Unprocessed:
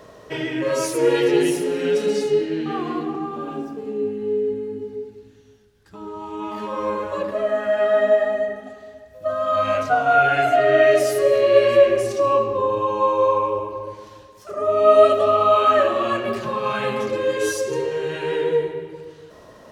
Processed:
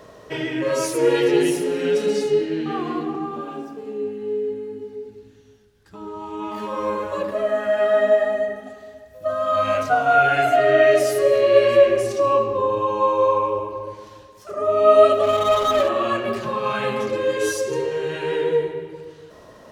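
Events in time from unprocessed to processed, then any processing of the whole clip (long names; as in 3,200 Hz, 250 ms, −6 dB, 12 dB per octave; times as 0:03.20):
0:03.41–0:05.06: low-shelf EQ 300 Hz −7.5 dB
0:06.54–0:10.73: high-shelf EQ 9,200 Hz +7 dB
0:15.23–0:15.89: running median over 25 samples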